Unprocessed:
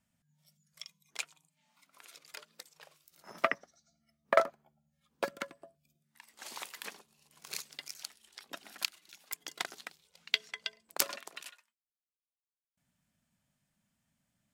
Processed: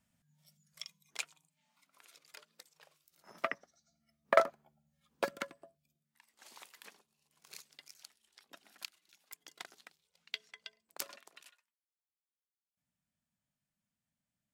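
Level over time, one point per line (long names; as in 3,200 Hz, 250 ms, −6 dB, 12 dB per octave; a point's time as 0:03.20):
0:00.82 +1 dB
0:02.08 −6.5 dB
0:03.40 −6.5 dB
0:04.41 0 dB
0:05.37 0 dB
0:06.30 −11 dB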